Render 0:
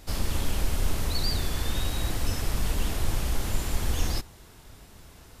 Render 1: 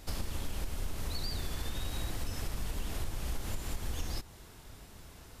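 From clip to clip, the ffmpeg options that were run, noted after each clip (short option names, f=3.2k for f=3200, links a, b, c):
-af "acompressor=threshold=-29dB:ratio=6,volume=-2dB"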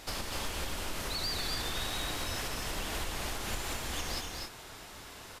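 -filter_complex "[0:a]asplit=2[a][b];[b]highpass=f=720:p=1,volume=15dB,asoftclip=type=tanh:threshold=-22.5dB[c];[a][c]amix=inputs=2:normalize=0,lowpass=f=5.8k:p=1,volume=-6dB,asplit=2[d][e];[e]aecho=0:1:246|276:0.562|0.376[f];[d][f]amix=inputs=2:normalize=0,volume=-1dB"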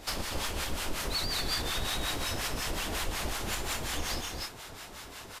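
-filter_complex "[0:a]acrossover=split=760[a][b];[a]aeval=exprs='val(0)*(1-0.7/2+0.7/2*cos(2*PI*5.5*n/s))':c=same[c];[b]aeval=exprs='val(0)*(1-0.7/2-0.7/2*cos(2*PI*5.5*n/s))':c=same[d];[c][d]amix=inputs=2:normalize=0,volume=6dB"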